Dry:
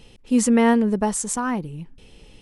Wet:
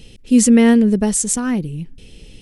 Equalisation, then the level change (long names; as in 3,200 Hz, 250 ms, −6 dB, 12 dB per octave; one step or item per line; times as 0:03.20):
parametric band 970 Hz −14.5 dB 1.4 octaves
+8.0 dB